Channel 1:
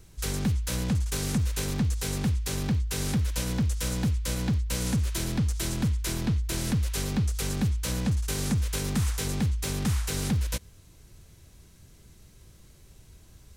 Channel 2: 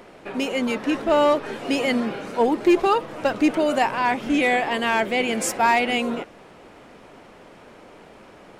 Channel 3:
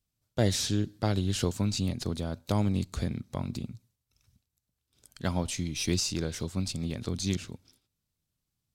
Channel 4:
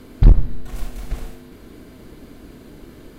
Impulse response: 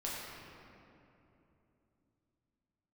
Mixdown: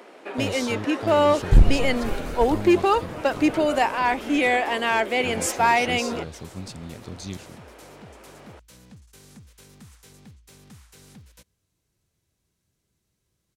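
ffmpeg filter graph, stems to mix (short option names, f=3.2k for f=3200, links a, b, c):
-filter_complex "[0:a]highpass=f=130:p=1,adelay=850,volume=-18.5dB[a];[1:a]highpass=f=250:w=0.5412,highpass=f=250:w=1.3066,volume=-0.5dB[b];[2:a]volume=-5dB[c];[3:a]adelay=1300,volume=-3.5dB[d];[a][b][c][d]amix=inputs=4:normalize=0"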